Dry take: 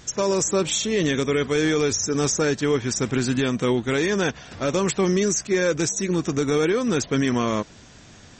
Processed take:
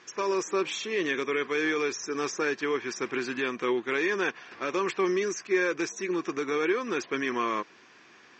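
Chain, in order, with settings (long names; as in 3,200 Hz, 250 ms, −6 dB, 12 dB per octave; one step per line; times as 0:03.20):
loudspeaker in its box 350–5,400 Hz, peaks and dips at 360 Hz +7 dB, 610 Hz −6 dB, 1,100 Hz +8 dB, 1,700 Hz +6 dB, 2,400 Hz +7 dB, 3,800 Hz −4 dB
level −7 dB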